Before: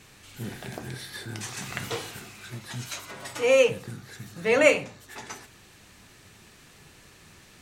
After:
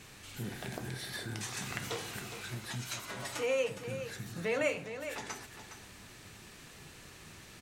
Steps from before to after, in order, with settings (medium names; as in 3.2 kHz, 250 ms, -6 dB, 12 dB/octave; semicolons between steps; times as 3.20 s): compression 2:1, threshold -39 dBFS, peak gain reduction 14.5 dB; on a send: delay 413 ms -10 dB